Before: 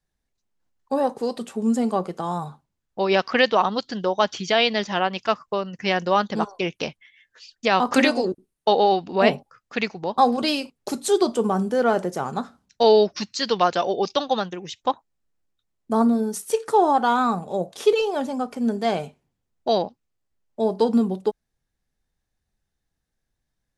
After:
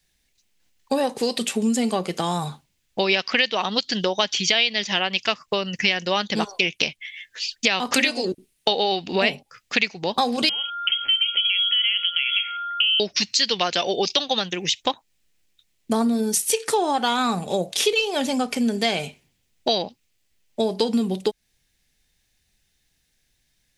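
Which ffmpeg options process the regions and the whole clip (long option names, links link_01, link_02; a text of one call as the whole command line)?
ffmpeg -i in.wav -filter_complex "[0:a]asettb=1/sr,asplit=3[link_01][link_02][link_03];[link_01]atrim=end=10.494[link_04];[link_02]atrim=start=10.49:end=13,asetpts=PTS-STARTPTS,afade=type=in:duration=0.004:curve=qsin,afade=type=out:start_time=2.506:duration=0.004:curve=qsin,aeval=exprs='val(0)+0.0224*sin(2*PI*2100*n/s)':channel_layout=same,acompressor=threshold=-33dB:ratio=2.5:attack=3.2:release=140:knee=1:detection=peak,lowpass=frequency=3000:width_type=q:width=0.5098,lowpass=frequency=3000:width_type=q:width=0.6013,lowpass=frequency=3000:width_type=q:width=0.9,lowpass=frequency=3000:width_type=q:width=2.563,afreqshift=-3500[link_05];[link_03]atrim=start=12.996[link_06];[link_04][link_05]acrossfade=duration=0.004:curve1=hsin:curve2=qsin[link_07];[link_07][link_06]acrossfade=duration=0.004:curve1=qsin:curve2=hsin,highshelf=frequency=1700:width_type=q:width=1.5:gain=10,acompressor=threshold=-26dB:ratio=4,volume=6.5dB" out.wav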